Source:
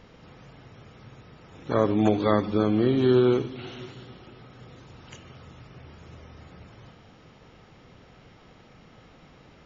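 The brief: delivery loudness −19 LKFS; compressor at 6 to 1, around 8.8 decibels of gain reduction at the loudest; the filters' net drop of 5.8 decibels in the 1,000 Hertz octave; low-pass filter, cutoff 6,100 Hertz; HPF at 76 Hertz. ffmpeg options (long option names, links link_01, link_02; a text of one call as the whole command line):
ffmpeg -i in.wav -af "highpass=76,lowpass=6100,equalizer=frequency=1000:width_type=o:gain=-8,acompressor=threshold=-26dB:ratio=6,volume=13.5dB" out.wav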